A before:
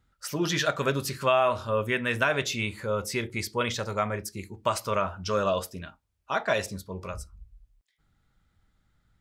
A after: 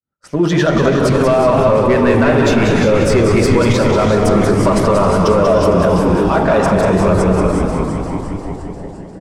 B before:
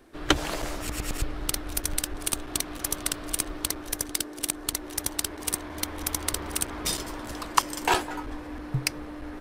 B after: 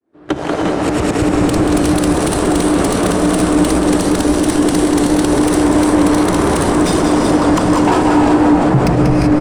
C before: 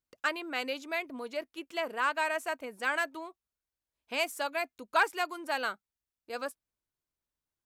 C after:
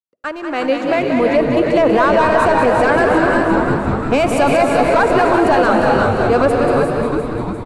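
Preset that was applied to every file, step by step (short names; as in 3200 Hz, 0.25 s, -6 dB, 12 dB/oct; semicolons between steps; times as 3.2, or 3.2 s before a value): opening faded in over 2.09 s; HPF 150 Hz 12 dB/oct; compressor, threshold -29 dBFS; sample leveller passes 2; Chebyshev low-pass 9600 Hz, order 3; on a send: frequency-shifting echo 0.35 s, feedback 63%, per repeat -120 Hz, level -10 dB; on the sum: non-linear reverb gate 0.41 s rising, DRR 4.5 dB; soft clip -20 dBFS; tilt shelf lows +9 dB, about 1400 Hz; maximiser +20.5 dB; warbling echo 0.186 s, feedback 52%, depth 96 cents, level -6.5 dB; gain -5 dB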